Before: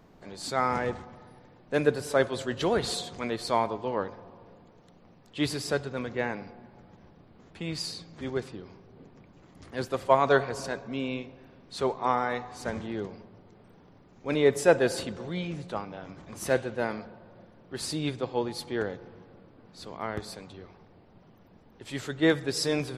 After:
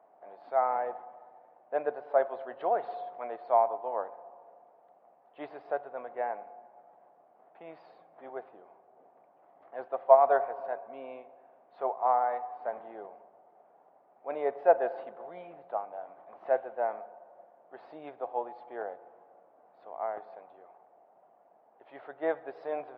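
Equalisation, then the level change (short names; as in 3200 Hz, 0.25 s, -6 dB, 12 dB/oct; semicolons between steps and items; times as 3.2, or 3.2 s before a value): resonant high-pass 700 Hz, resonance Q 4.9; air absorption 450 m; tape spacing loss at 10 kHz 40 dB; -2.5 dB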